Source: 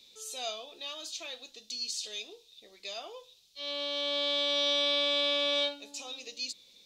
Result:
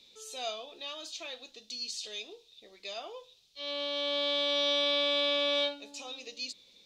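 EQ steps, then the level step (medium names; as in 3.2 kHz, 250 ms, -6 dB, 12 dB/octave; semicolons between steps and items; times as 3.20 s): treble shelf 5.9 kHz -10 dB; +1.5 dB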